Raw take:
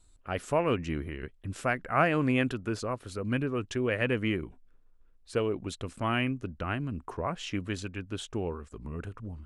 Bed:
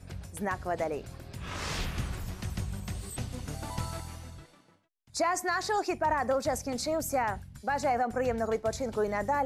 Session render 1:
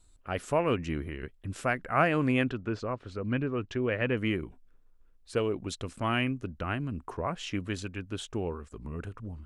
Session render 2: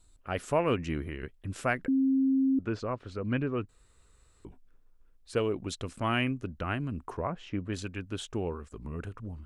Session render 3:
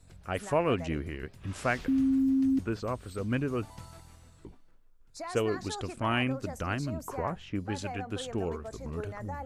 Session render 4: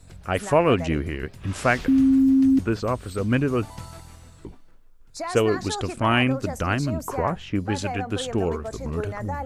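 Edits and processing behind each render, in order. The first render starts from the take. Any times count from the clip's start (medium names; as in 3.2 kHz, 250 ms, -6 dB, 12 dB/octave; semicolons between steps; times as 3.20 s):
2.44–4.17 s: distance through air 150 m; 5.36–6.24 s: dynamic bell 5.5 kHz, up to +5 dB, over -53 dBFS, Q 1.3
1.88–2.59 s: bleep 267 Hz -22 dBFS; 3.69–4.45 s: room tone; 7.27–7.73 s: low-pass 1 kHz 6 dB/octave
add bed -12 dB
trim +8.5 dB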